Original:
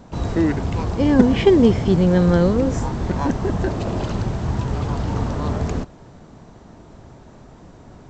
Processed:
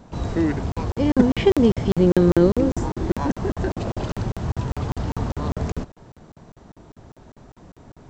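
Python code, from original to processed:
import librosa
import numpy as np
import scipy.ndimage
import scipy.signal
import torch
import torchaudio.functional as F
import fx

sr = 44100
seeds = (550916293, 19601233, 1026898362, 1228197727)

y = fx.peak_eq(x, sr, hz=340.0, db=11.5, octaves=0.32, at=(1.99, 3.17))
y = fx.buffer_crackle(y, sr, first_s=0.72, period_s=0.2, block=2048, kind='zero')
y = y * librosa.db_to_amplitude(-2.5)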